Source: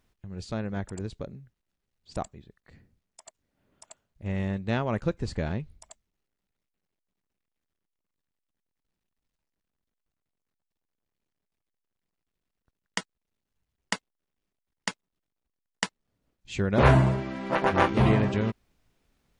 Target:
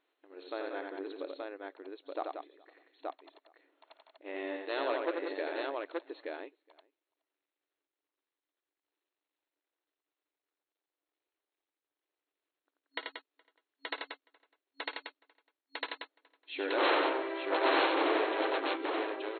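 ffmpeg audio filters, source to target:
-filter_complex "[0:a]aeval=exprs='0.112*(abs(mod(val(0)/0.112+3,4)-2)-1)':c=same,asplit=2[a][b];[b]adelay=419.8,volume=-27dB,highshelf=f=4k:g=-9.45[c];[a][c]amix=inputs=2:normalize=0,afftfilt=real='re*between(b*sr/4096,270,4300)':imag='im*between(b*sr/4096,270,4300)':win_size=4096:overlap=0.75,asplit=2[d][e];[e]aecho=0:1:55|86|183|877:0.158|0.631|0.447|0.708[f];[d][f]amix=inputs=2:normalize=0,volume=-3dB"

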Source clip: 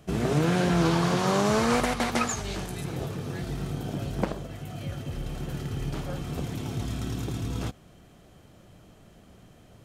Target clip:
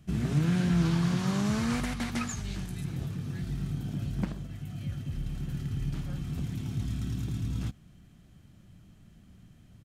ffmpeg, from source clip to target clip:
-af "firequalizer=gain_entry='entry(190,0);entry(450,-16);entry(1700,-7)':delay=0.05:min_phase=1"

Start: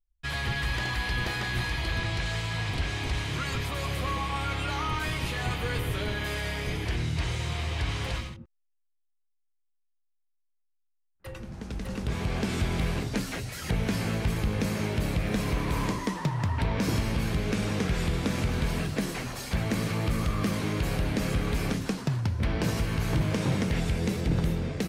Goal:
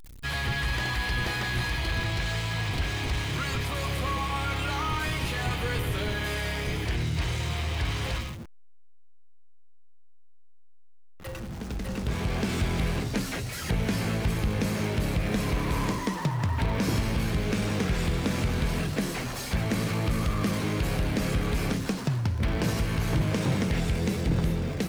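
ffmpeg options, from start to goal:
-af "aeval=exprs='val(0)+0.5*0.0112*sgn(val(0))':c=same"

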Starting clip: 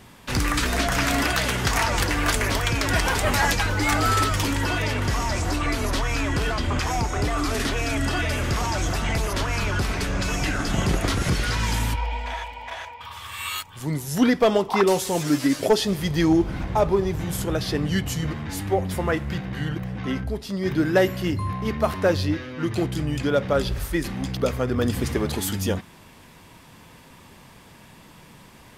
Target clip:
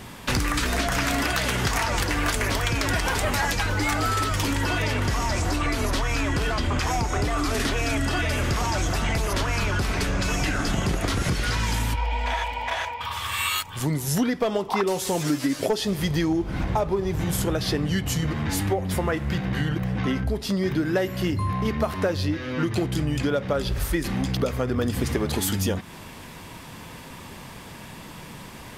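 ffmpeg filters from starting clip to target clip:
-af "acompressor=threshold=-29dB:ratio=6,volume=7.5dB"

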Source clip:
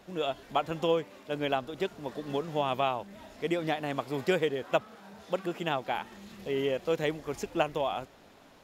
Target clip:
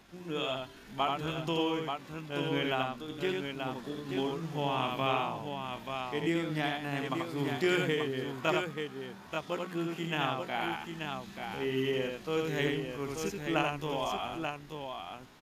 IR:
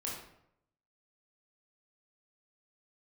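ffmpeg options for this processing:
-af "asetrate=42845,aresample=44100,atempo=1.0293,equalizer=f=560:t=o:w=0.86:g=-9,atempo=0.56,bandreject=f=60:t=h:w=6,bandreject=f=120:t=h:w=6,bandreject=f=180:t=h:w=6,aecho=1:1:84|884:0.668|0.531"

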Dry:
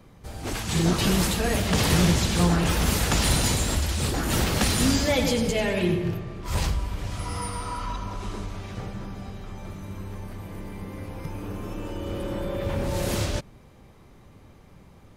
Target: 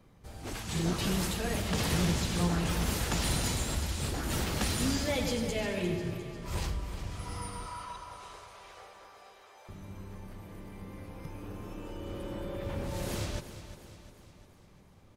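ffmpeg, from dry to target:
-filter_complex "[0:a]asettb=1/sr,asplit=3[a][b][c];[a]atrim=end=7.664[d];[b]atrim=start=7.66:end=9.69,asetpts=PTS-STARTPTS,afade=t=in:d=0.004:c=qsin,afade=t=out:st=2.026:d=0.004:c=qsin,highpass=f=500:w=0.5412,highpass=f=500:w=1.3066[e];[c]atrim=start=9.686[f];[d][e]acrossfade=d=0.004:c1=hsin:c2=qsin[g];[g][f]acrossfade=d=0.004:c1=qsin:c2=hsin,asplit=2[h][i];[i]aecho=0:1:352|704|1056|1408|1760|2112:0.251|0.133|0.0706|0.0374|0.0198|0.0105[j];[h][j]amix=inputs=2:normalize=0,volume=-8.5dB"

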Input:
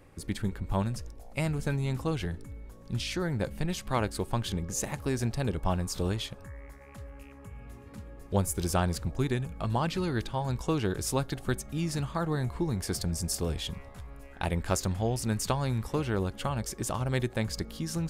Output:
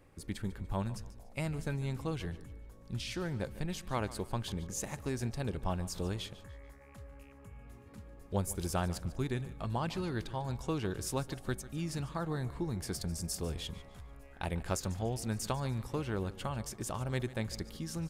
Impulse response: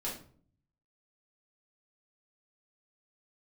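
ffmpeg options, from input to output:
-af "aecho=1:1:146|292|438:0.141|0.0523|0.0193,volume=-6dB"

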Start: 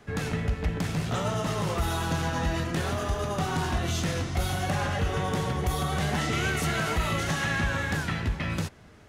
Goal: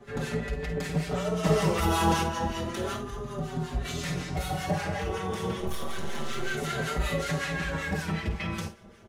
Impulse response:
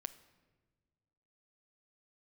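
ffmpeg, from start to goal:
-filter_complex "[0:a]asettb=1/sr,asplit=3[a][b][c];[a]atrim=end=5.604[d];[b]atrim=start=5.6:end=6.51,asetpts=PTS-STARTPTS,afade=t=in:d=0.004:c=qsin,afade=t=out:st=0.906:d=0.004:c=qsin,aeval=exprs='max(val(0),0)':c=same[e];[c]atrim=start=6.506[f];[d][e]acrossfade=d=0.004:c1=hsin:c2=qsin[g];[g][f]acrossfade=d=0.004:c1=qsin:c2=hsin,equalizer=f=460:w=2.1:g=6,alimiter=limit=-20dB:level=0:latency=1:release=255,asettb=1/sr,asplit=3[h][i][j];[h]atrim=end=1.434[k];[i]atrim=start=1.43:end=2.23,asetpts=PTS-STARTPTS,afade=t=in:d=0.004:c=qsin,afade=t=out:st=0.796:d=0.004:c=qsin,acontrast=62[l];[j]atrim=start=2.226[m];[k][l]acrossfade=d=0.004:c1=hsin:c2=qsin[n];[n][m]acrossfade=d=0.004:c1=qsin:c2=hsin,acrossover=split=1100[o][p];[o]aeval=exprs='val(0)*(1-0.7/2+0.7/2*cos(2*PI*5.3*n/s))':c=same[q];[p]aeval=exprs='val(0)*(1-0.7/2-0.7/2*cos(2*PI*5.3*n/s))':c=same[r];[q][r]amix=inputs=2:normalize=0,asettb=1/sr,asplit=3[s][t][u];[s]atrim=end=2.964[v];[t]atrim=start=2.96:end=3.85,asetpts=PTS-STARTPTS,afade=t=in:d=0.004:c=qsin,afade=t=out:st=0.886:d=0.004:c=qsin,acrossover=split=250[w][x];[x]acompressor=threshold=-41dB:ratio=5[y];[w][y]amix=inputs=2:normalize=0[z];[u]atrim=start=3.846[aa];[v][z]acrossfade=d=0.004:c1=hsin:c2=qsin[ab];[ab][aa]acrossfade=d=0.004:c1=qsin:c2=hsin,aecho=1:1:5.1:0.39,aecho=1:1:51|68:0.335|0.141,asplit=2[ac][ad];[ad]adelay=5.3,afreqshift=0.31[ae];[ac][ae]amix=inputs=2:normalize=1,volume=4.5dB"

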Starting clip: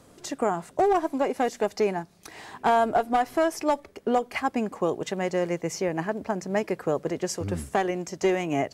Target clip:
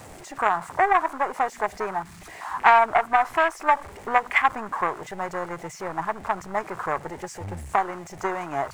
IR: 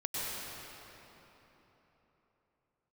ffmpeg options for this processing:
-af "aeval=exprs='val(0)+0.5*0.0422*sgn(val(0))':c=same,afwtdn=0.0398,equalizer=f=120:t=o:w=0.82:g=5,aeval=exprs='0.316*(cos(1*acos(clip(val(0)/0.316,-1,1)))-cos(1*PI/2))+0.0501*(cos(3*acos(clip(val(0)/0.316,-1,1)))-cos(3*PI/2))+0.00794*(cos(4*acos(clip(val(0)/0.316,-1,1)))-cos(4*PI/2))':c=same,equalizer=f=125:t=o:w=1:g=-7,equalizer=f=250:t=o:w=1:g=-10,equalizer=f=500:t=o:w=1:g=-7,equalizer=f=1k:t=o:w=1:g=10,equalizer=f=2k:t=o:w=1:g=11,equalizer=f=8k:t=o:w=1:g=9,volume=1.5dB"

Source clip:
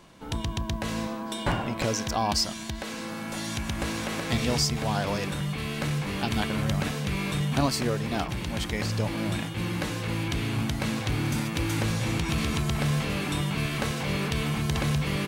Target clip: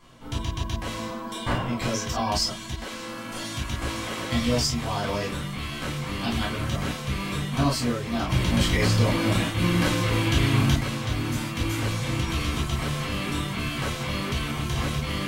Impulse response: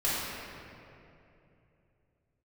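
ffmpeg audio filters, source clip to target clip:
-filter_complex "[0:a]asettb=1/sr,asplit=3[a][b][c];[a]atrim=end=8.274[d];[b]atrim=start=8.27:end=10.76,asetpts=PTS-STARTPTS,afade=t=in:d=0.004:c=qsin,afade=t=out:st=2.486:d=0.004:c=qsin,acontrast=70[e];[c]atrim=start=10.756[f];[d][e]acrossfade=d=0.004:c1=hsin:c2=qsin[g];[g][f]acrossfade=d=0.004:c1=qsin:c2=hsin[h];[1:a]atrim=start_sample=2205,afade=t=out:st=0.15:d=0.01,atrim=end_sample=7056,asetrate=74970,aresample=44100[i];[h][i]afir=irnorm=-1:irlink=0,volume=-2dB"

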